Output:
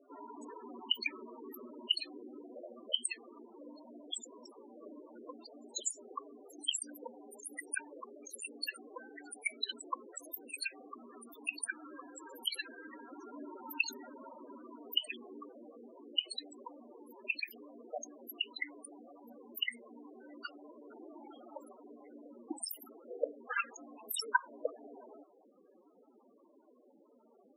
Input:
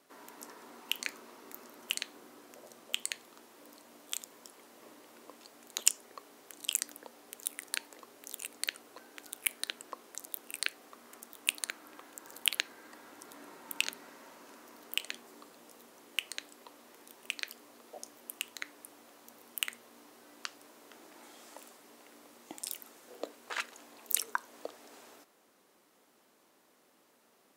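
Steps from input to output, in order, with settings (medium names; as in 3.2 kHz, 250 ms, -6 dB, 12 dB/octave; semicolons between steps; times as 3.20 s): peak limiter -12.5 dBFS, peak gain reduction 9.5 dB; loudest bins only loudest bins 8; trim +9 dB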